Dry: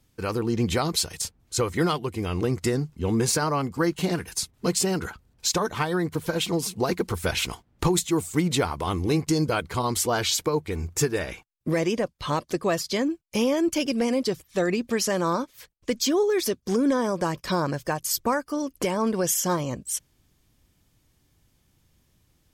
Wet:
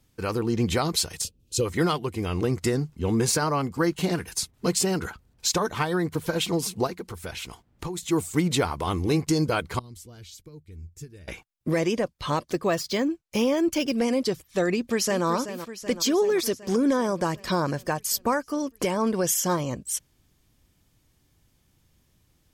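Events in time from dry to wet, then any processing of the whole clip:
0:01.24–0:01.66: gain on a spectral selection 600–2,400 Hz −16 dB
0:06.87–0:08.03: downward compressor 1.5 to 1, threshold −49 dBFS
0:09.79–0:11.28: guitar amp tone stack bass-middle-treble 10-0-1
0:12.50–0:13.99: linearly interpolated sample-rate reduction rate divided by 2×
0:14.72–0:15.26: delay throw 380 ms, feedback 70%, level −11 dB

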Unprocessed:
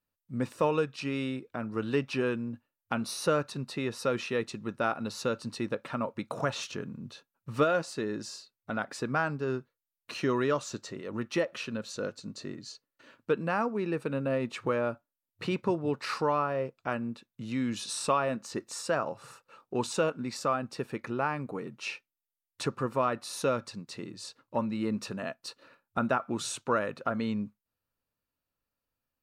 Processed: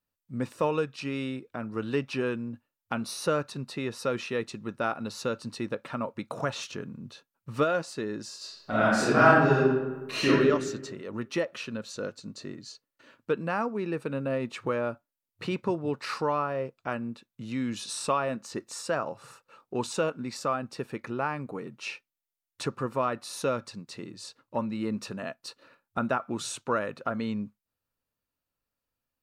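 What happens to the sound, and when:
0:08.37–0:10.29: thrown reverb, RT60 1.2 s, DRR −11 dB

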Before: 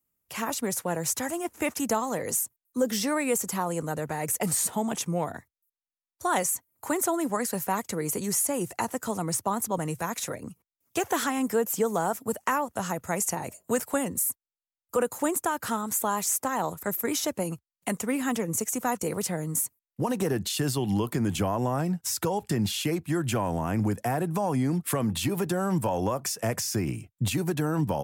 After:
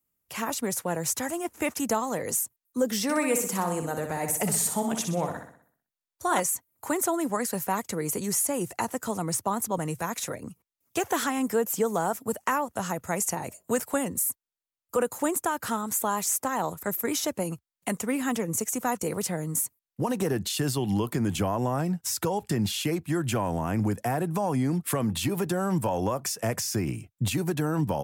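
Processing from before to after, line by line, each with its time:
0:03.03–0:06.40: flutter between parallel walls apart 10.7 metres, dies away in 0.56 s

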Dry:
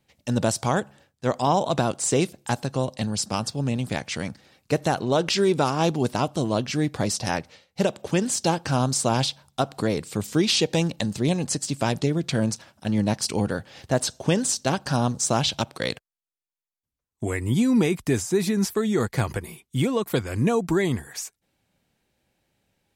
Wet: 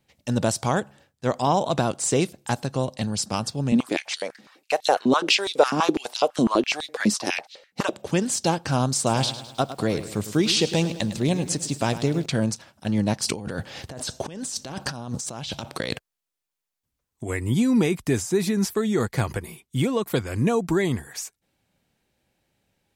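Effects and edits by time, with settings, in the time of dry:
0:03.72–0:07.93: high-pass on a step sequencer 12 Hz 220–3,800 Hz
0:08.96–0:12.26: feedback echo at a low word length 105 ms, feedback 55%, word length 8 bits, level −12.5 dB
0:13.27–0:17.30: compressor whose output falls as the input rises −32 dBFS

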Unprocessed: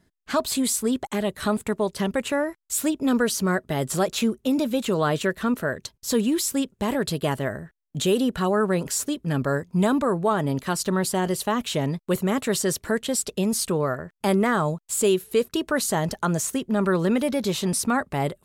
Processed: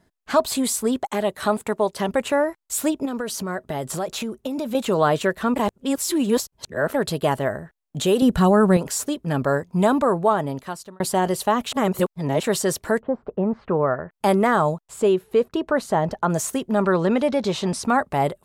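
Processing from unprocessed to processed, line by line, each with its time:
0:01.00–0:02.09: low-shelf EQ 130 Hz −9 dB
0:03.05–0:04.75: downward compressor 12 to 1, threshold −25 dBFS
0:05.56–0:06.94: reverse
0:08.22–0:08.77: bass and treble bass +12 dB, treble +5 dB
0:10.18–0:11.00: fade out
0:11.72–0:12.43: reverse
0:12.99–0:14.12: low-pass filter 1,100 Hz → 2,800 Hz 24 dB per octave
0:14.81–0:16.30: low-pass filter 1,700 Hz 6 dB per octave
0:16.82–0:17.84: low-pass filter 6,500 Hz
whole clip: parametric band 770 Hz +7 dB 1.4 octaves

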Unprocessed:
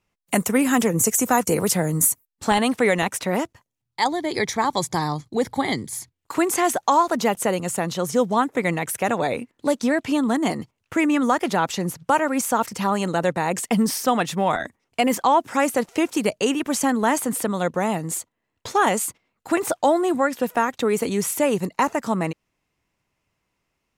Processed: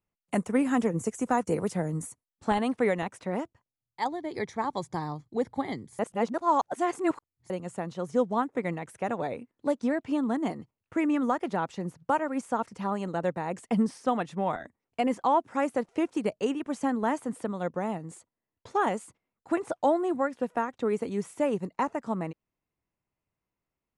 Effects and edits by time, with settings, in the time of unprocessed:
0:05.99–0:07.50: reverse
whole clip: Butterworth low-pass 11,000 Hz 96 dB per octave; high-shelf EQ 2,200 Hz −12 dB; expander for the loud parts 1.5 to 1, over −29 dBFS; level −4 dB

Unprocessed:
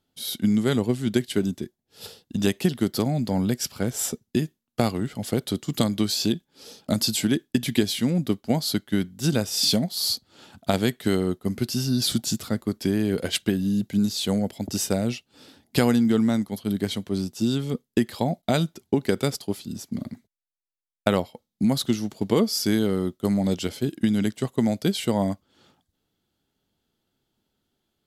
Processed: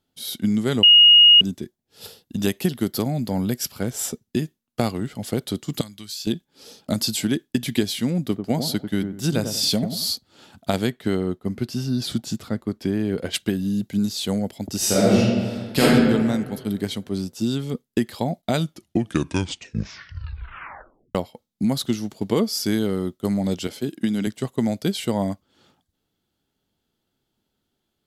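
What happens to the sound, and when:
0:00.83–0:01.41: beep over 2,870 Hz −7.5 dBFS
0:02.05–0:03.83: parametric band 12,000 Hz +7.5 dB 0.29 octaves
0:05.81–0:06.27: guitar amp tone stack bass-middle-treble 5-5-5
0:08.22–0:10.11: delay with a low-pass on its return 95 ms, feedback 31%, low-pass 1,100 Hz, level −6.5 dB
0:10.87–0:13.34: high-shelf EQ 4,300 Hz −10.5 dB
0:14.77–0:15.82: thrown reverb, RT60 1.7 s, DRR −9 dB
0:18.58: tape stop 2.57 s
0:23.67–0:24.27: high-pass filter 150 Hz

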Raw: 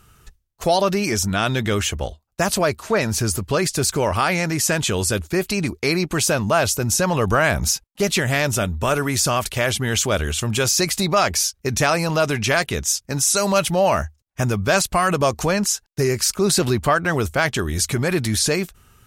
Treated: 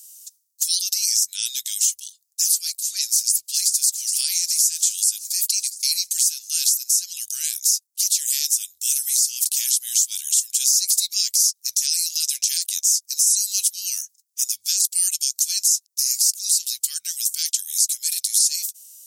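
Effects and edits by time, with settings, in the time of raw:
0:03.07–0:03.82: delay throw 410 ms, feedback 70%, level −15.5 dB
whole clip: inverse Chebyshev high-pass filter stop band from 970 Hz, stop band 80 dB; downward compressor 6 to 1, threshold −28 dBFS; boost into a limiter +23.5 dB; level −6 dB

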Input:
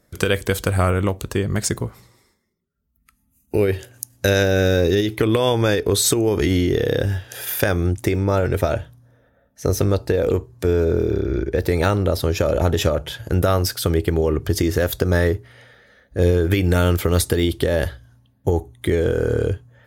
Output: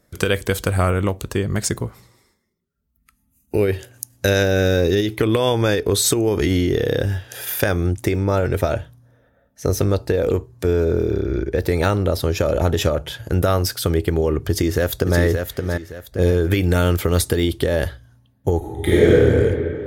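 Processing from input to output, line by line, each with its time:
0:14.49–0:15.20: delay throw 570 ms, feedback 30%, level −5 dB
0:18.57–0:19.09: thrown reverb, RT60 2.7 s, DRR −7.5 dB

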